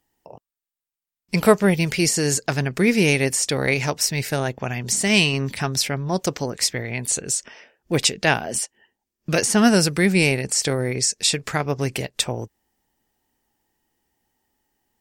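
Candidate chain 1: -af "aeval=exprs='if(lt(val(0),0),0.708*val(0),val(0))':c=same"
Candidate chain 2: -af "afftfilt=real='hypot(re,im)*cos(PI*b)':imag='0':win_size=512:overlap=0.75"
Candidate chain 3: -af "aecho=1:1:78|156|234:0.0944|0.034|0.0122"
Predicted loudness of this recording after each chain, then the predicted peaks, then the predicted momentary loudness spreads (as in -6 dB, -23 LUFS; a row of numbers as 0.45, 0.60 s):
-22.0, -25.0, -20.5 LUFS; -2.5, -1.5, -1.5 dBFS; 9, 9, 9 LU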